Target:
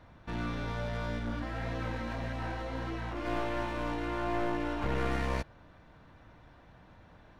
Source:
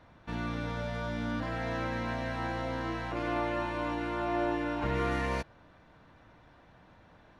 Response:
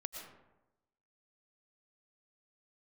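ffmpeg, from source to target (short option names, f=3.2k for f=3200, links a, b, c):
-filter_complex "[0:a]asplit=3[a][b][c];[a]afade=t=out:st=1.18:d=0.02[d];[b]flanger=delay=15.5:depth=5.3:speed=1.7,afade=t=in:st=1.18:d=0.02,afade=t=out:st=3.24:d=0.02[e];[c]afade=t=in:st=3.24:d=0.02[f];[d][e][f]amix=inputs=3:normalize=0,aeval=exprs='clip(val(0),-1,0.015)':c=same,lowshelf=f=110:g=6.5"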